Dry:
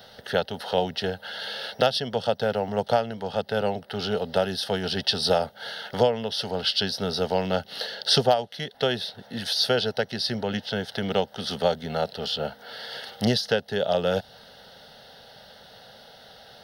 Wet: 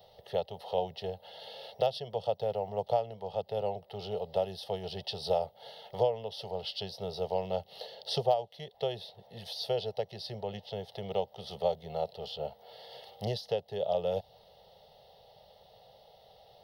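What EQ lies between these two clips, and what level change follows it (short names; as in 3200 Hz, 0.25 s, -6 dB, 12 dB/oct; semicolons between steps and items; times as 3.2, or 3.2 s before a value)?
bell 7600 Hz -12.5 dB 1.9 oct; fixed phaser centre 630 Hz, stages 4; -5.5 dB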